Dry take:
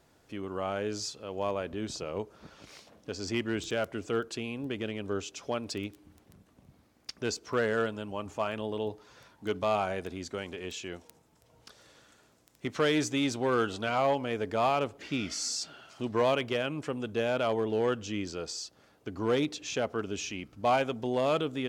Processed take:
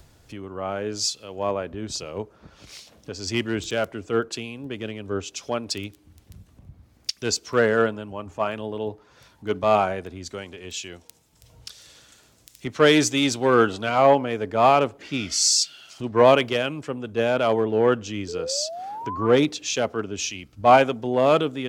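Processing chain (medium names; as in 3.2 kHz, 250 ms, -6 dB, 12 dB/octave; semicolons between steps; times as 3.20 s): upward compressor, threshold -32 dBFS; painted sound rise, 18.28–19.27 s, 420–1200 Hz -34 dBFS; three bands expanded up and down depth 100%; trim +6.5 dB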